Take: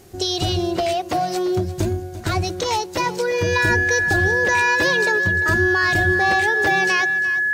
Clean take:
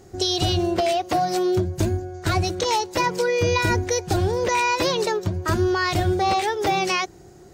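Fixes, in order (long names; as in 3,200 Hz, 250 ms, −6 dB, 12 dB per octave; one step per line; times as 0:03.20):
notch filter 1,700 Hz, Q 30
downward expander −22 dBFS, range −21 dB
echo removal 346 ms −15 dB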